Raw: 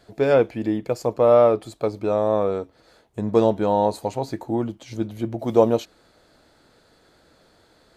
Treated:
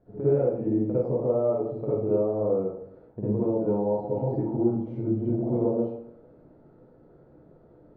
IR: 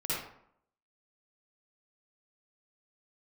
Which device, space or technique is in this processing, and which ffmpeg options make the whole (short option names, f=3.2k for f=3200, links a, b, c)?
television next door: -filter_complex "[0:a]acompressor=threshold=-26dB:ratio=5,lowpass=530[a];[1:a]atrim=start_sample=2205[b];[a][b]afir=irnorm=-1:irlink=0"